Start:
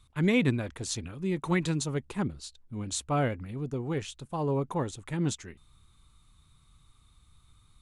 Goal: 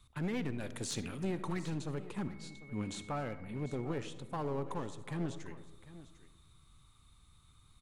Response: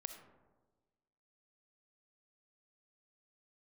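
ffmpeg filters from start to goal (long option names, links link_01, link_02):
-filter_complex "[0:a]acrossover=split=3000[link_01][link_02];[link_02]acompressor=threshold=-46dB:ratio=4:attack=1:release=60[link_03];[link_01][link_03]amix=inputs=2:normalize=0,asettb=1/sr,asplit=3[link_04][link_05][link_06];[link_04]atrim=end=2.174[link_07];[link_05]atrim=start=2.17:end=3.85,asetpts=PTS-STARTPTS,afade=type=in:duration=0.004:curve=qsin,afade=type=out:start_time=1.676:duration=0.004:curve=qsin,aeval=exprs='val(0)+0.00178*sin(2*PI*2200*n/s)':channel_layout=same[link_08];[link_06]atrim=start=3.846[link_09];[link_07][link_08]acrossfade=duration=0.004:curve1=hsin:curve2=qsin[link_10];[link_10][link_09]acrossfade=duration=0.004:curve1=qsin:curve2=hsin,acrossover=split=100|2900[link_11][link_12][link_13];[link_11]acompressor=threshold=-59dB:ratio=6[link_14];[link_14][link_12][link_13]amix=inputs=3:normalize=0,alimiter=level_in=0.5dB:limit=-24dB:level=0:latency=1:release=450,volume=-0.5dB,aeval=exprs='0.0596*(cos(1*acos(clip(val(0)/0.0596,-1,1)))-cos(1*PI/2))+0.00596*(cos(3*acos(clip(val(0)/0.0596,-1,1)))-cos(3*PI/2))':channel_layout=same,asettb=1/sr,asplit=3[link_15][link_16][link_17];[link_15]atrim=end=0.604[link_18];[link_16]atrim=start=0.6:end=1.25,asetpts=PTS-STARTPTS,afade=type=in:duration=0.004:curve=qsin,afade=type=out:start_time=0.646:duration=0.004:curve=qsin,highshelf=frequency=4300:gain=11.5[link_19];[link_17]atrim=start=1.246[link_20];[link_18][link_19]acrossfade=duration=0.004:curve1=hsin:curve2=qsin[link_21];[link_21][link_20]acrossfade=duration=0.004:curve1=qsin:curve2=hsin,aeval=exprs='clip(val(0),-1,0.0178)':channel_layout=same,aecho=1:1:749:0.158,asplit=2[link_22][link_23];[1:a]atrim=start_sample=2205[link_24];[link_23][link_24]afir=irnorm=-1:irlink=0,volume=5dB[link_25];[link_22][link_25]amix=inputs=2:normalize=0,volume=-4.5dB"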